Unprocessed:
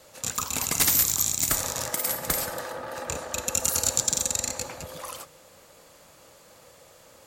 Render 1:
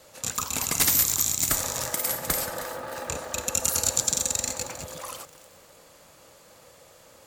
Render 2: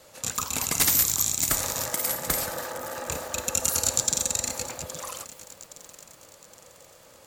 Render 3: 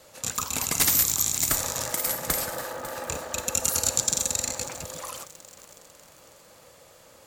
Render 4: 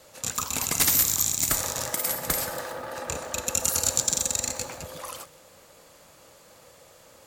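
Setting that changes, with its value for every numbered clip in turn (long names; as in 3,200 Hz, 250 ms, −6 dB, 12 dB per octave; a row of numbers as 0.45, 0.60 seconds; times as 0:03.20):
feedback echo at a low word length, delay time: 313, 818, 548, 126 milliseconds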